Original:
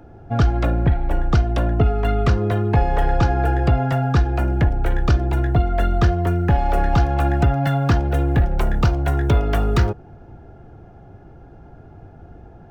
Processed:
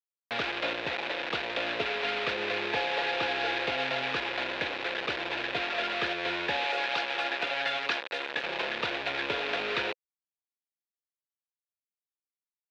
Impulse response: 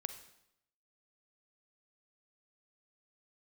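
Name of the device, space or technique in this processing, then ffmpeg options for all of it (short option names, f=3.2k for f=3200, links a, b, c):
hand-held game console: -filter_complex "[0:a]asettb=1/sr,asplit=3[a][b][c];[a]atrim=end=6.664[d];[b]atrim=start=6.66:end=8.44,asetpts=PTS-STARTPTS,afade=t=in:d=0.004:c=qsin,afade=t=out:st=1.776:d=0.004:c=qsin,aemphasis=mode=production:type=riaa[e];[c]atrim=start=8.436[f];[d][e]acrossfade=d=0.004:c1=hsin:c2=qsin[g];[g][f]acrossfade=d=0.004:c1=qsin:c2=hsin,acrusher=bits=3:mix=0:aa=0.000001,highpass=500,equalizer=f=510:t=q:w=4:g=5,equalizer=f=750:t=q:w=4:g=-4,equalizer=f=1.2k:t=q:w=4:g=-5,equalizer=f=1.7k:t=q:w=4:g=4,equalizer=f=2.5k:t=q:w=4:g=8,equalizer=f=3.7k:t=q:w=4:g=6,lowpass=f=4.1k:w=0.5412,lowpass=f=4.1k:w=1.3066,volume=-7dB"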